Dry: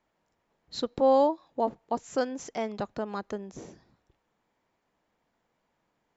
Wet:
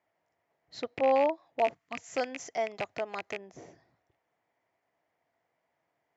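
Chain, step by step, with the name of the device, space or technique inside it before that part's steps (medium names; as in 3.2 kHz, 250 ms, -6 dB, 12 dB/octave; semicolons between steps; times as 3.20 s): car door speaker with a rattle (rattle on loud lows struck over -39 dBFS, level -22 dBFS; cabinet simulation 100–6800 Hz, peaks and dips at 100 Hz +4 dB, 210 Hz -9 dB, 680 Hz +9 dB, 2 kHz +8 dB, 3.9 kHz -4 dB); 1.74–1.98 s: time-frequency box 320–1000 Hz -14 dB; 1.59–3.37 s: treble shelf 4.7 kHz +11 dB; trim -5.5 dB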